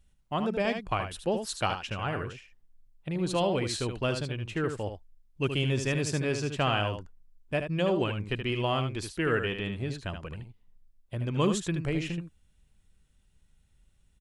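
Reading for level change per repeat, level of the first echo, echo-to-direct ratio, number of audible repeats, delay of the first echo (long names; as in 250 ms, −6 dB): repeats not evenly spaced, −7.5 dB, −7.5 dB, 1, 76 ms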